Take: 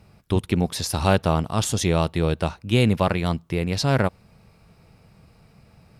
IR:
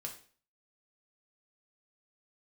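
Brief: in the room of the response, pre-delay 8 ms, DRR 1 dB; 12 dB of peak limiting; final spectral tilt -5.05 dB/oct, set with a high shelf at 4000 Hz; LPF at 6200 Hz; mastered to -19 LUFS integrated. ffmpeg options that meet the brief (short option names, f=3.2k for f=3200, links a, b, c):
-filter_complex "[0:a]lowpass=6.2k,highshelf=f=4k:g=4,alimiter=limit=-16.5dB:level=0:latency=1,asplit=2[a][b];[1:a]atrim=start_sample=2205,adelay=8[c];[b][c]afir=irnorm=-1:irlink=0,volume=1dB[d];[a][d]amix=inputs=2:normalize=0,volume=6dB"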